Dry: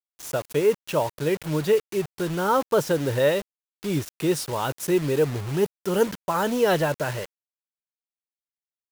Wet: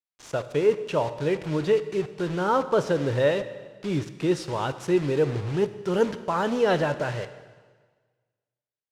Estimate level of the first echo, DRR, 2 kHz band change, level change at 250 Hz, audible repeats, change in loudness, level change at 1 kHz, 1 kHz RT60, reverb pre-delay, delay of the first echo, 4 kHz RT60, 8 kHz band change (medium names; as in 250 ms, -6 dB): no echo, 11.5 dB, -1.5 dB, -0.5 dB, no echo, -1.0 dB, -1.0 dB, 1.5 s, 7 ms, no echo, 1.4 s, -9.5 dB